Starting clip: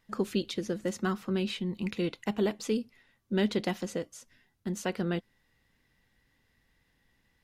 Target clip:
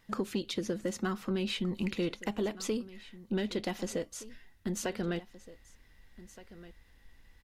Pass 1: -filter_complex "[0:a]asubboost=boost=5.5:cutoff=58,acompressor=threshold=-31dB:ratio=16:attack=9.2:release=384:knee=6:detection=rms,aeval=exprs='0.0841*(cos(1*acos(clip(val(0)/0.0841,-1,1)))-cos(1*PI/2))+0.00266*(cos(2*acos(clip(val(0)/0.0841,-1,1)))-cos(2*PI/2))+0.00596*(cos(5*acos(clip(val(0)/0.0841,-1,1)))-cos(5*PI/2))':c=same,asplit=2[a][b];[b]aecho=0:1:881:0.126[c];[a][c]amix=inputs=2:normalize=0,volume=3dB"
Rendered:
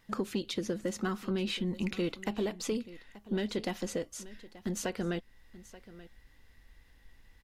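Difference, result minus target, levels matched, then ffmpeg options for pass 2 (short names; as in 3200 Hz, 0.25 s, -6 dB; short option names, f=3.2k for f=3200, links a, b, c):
echo 0.639 s early
-filter_complex "[0:a]asubboost=boost=5.5:cutoff=58,acompressor=threshold=-31dB:ratio=16:attack=9.2:release=384:knee=6:detection=rms,aeval=exprs='0.0841*(cos(1*acos(clip(val(0)/0.0841,-1,1)))-cos(1*PI/2))+0.00266*(cos(2*acos(clip(val(0)/0.0841,-1,1)))-cos(2*PI/2))+0.00596*(cos(5*acos(clip(val(0)/0.0841,-1,1)))-cos(5*PI/2))':c=same,asplit=2[a][b];[b]aecho=0:1:1520:0.126[c];[a][c]amix=inputs=2:normalize=0,volume=3dB"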